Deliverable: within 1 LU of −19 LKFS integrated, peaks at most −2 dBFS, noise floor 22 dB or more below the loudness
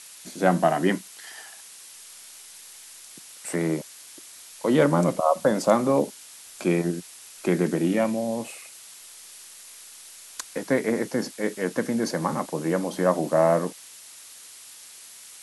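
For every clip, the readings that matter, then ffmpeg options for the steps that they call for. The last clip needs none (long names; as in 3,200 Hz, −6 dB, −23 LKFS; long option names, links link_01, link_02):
background noise floor −46 dBFS; target noise floor −47 dBFS; integrated loudness −24.5 LKFS; sample peak −6.0 dBFS; target loudness −19.0 LKFS
→ -af "afftdn=noise_reduction=6:noise_floor=-46"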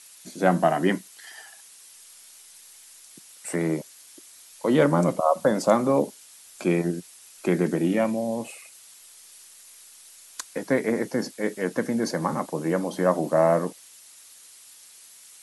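background noise floor −50 dBFS; integrated loudness −24.5 LKFS; sample peak −6.0 dBFS; target loudness −19.0 LKFS
→ -af "volume=5.5dB,alimiter=limit=-2dB:level=0:latency=1"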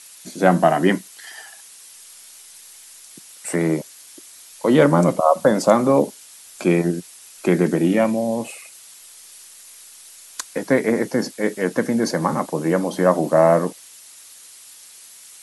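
integrated loudness −19.5 LKFS; sample peak −2.0 dBFS; background noise floor −44 dBFS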